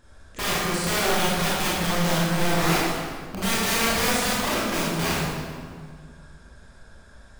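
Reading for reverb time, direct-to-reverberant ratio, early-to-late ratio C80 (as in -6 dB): 1.9 s, -8.0 dB, -0.5 dB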